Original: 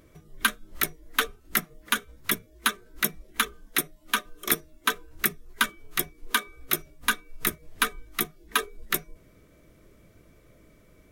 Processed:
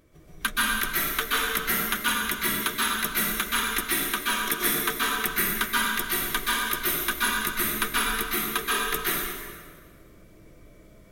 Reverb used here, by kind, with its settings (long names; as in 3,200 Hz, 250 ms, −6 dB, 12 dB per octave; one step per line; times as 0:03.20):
dense smooth reverb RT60 1.7 s, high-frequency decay 0.8×, pre-delay 115 ms, DRR −7.5 dB
level −4.5 dB